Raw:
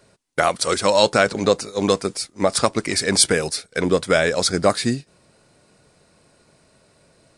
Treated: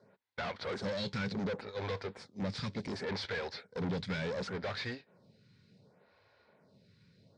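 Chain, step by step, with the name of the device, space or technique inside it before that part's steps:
vibe pedal into a guitar amplifier (phaser with staggered stages 0.68 Hz; tube saturation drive 32 dB, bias 0.65; loudspeaker in its box 100–4,300 Hz, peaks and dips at 100 Hz +9 dB, 190 Hz +4 dB, 320 Hz −10 dB, 670 Hz −5 dB, 1,200 Hz −6 dB, 2,800 Hz −6 dB)

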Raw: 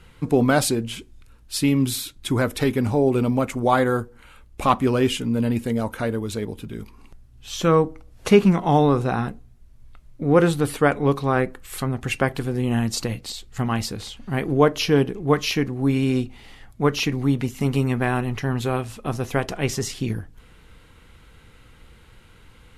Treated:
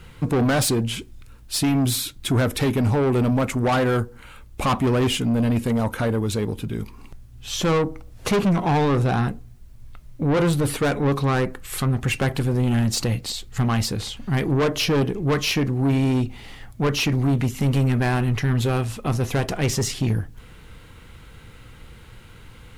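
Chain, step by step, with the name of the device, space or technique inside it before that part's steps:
open-reel tape (soft clipping −21.5 dBFS, distortion −7 dB; parametric band 120 Hz +4 dB 0.92 octaves; white noise bed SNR 48 dB)
level +4.5 dB

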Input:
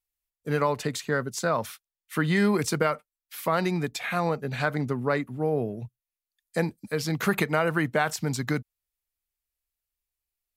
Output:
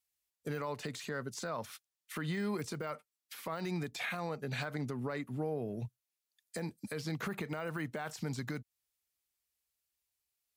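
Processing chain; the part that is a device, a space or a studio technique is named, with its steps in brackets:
broadcast voice chain (high-pass filter 76 Hz; de-essing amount 100%; downward compressor 5 to 1, threshold −32 dBFS, peak gain reduction 11.5 dB; parametric band 6,000 Hz +5 dB 2.3 octaves; brickwall limiter −27 dBFS, peak gain reduction 8.5 dB)
level −1 dB

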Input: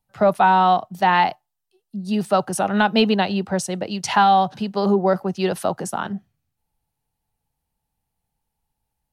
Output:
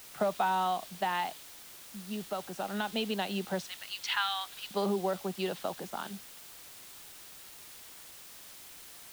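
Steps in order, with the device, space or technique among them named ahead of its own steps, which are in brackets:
0:03.65–0:04.71: high-pass filter 1,300 Hz 24 dB per octave
medium wave at night (band-pass filter 190–4,000 Hz; downward compressor, threshold −19 dBFS, peak gain reduction 7.5 dB; amplitude tremolo 0.23 Hz, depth 52%; steady tone 9,000 Hz −57 dBFS; white noise bed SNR 14 dB)
dynamic equaliser 3,500 Hz, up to +7 dB, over −51 dBFS, Q 1.9
level −7 dB

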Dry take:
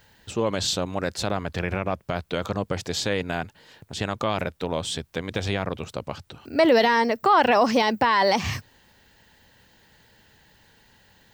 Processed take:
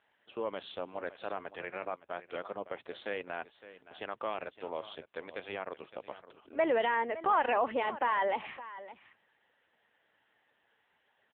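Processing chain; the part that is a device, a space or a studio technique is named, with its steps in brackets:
satellite phone (band-pass filter 390–3,100 Hz; single-tap delay 563 ms −15 dB; level −8.5 dB; AMR narrowband 6.7 kbit/s 8,000 Hz)

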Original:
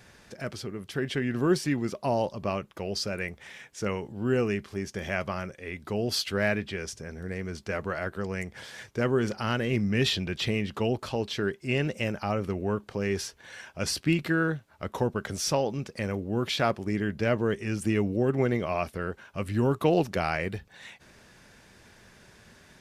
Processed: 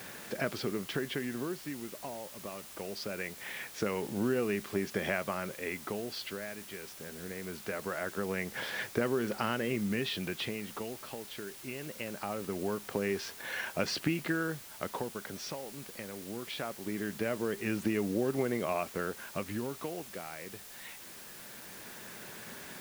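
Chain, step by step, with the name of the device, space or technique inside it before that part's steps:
medium wave at night (band-pass filter 180–3,600 Hz; downward compressor, threshold −36 dBFS, peak gain reduction 16.5 dB; amplitude tremolo 0.22 Hz, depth 75%; steady tone 10,000 Hz −72 dBFS; white noise bed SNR 13 dB)
level +8 dB

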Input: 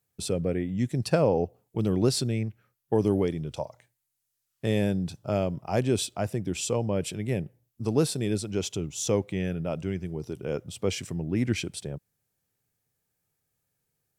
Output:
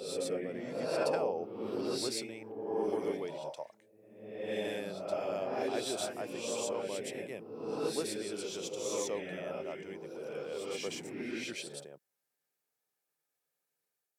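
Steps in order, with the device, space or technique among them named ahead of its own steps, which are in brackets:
ghost voice (reversed playback; convolution reverb RT60 1.2 s, pre-delay 110 ms, DRR −3.5 dB; reversed playback; high-pass filter 430 Hz 12 dB per octave)
level −9 dB

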